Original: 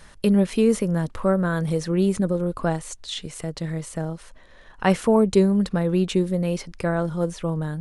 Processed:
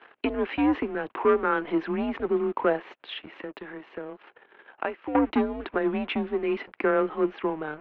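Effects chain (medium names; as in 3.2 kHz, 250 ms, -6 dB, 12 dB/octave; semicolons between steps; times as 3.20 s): 2.86–5.15 s: compression 8:1, threshold -31 dBFS, peak gain reduction 17.5 dB; waveshaping leveller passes 2; mistuned SSB -150 Hz 470–3000 Hz; trim -2 dB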